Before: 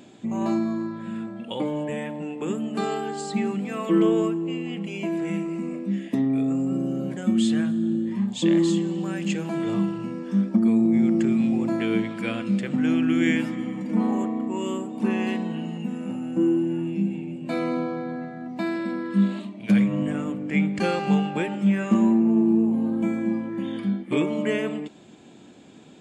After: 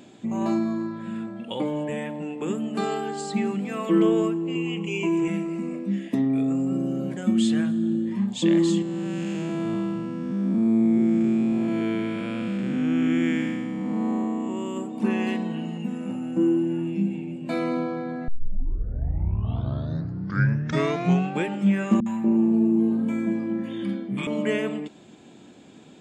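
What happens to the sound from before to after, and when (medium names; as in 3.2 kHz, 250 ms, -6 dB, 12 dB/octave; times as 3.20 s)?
4.55–5.28 s: rippled EQ curve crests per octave 0.72, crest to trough 14 dB
8.82–14.77 s: spectral blur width 330 ms
18.28 s: tape start 3.13 s
22.00–24.27 s: three bands offset in time lows, highs, mids 60/240 ms, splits 200/790 Hz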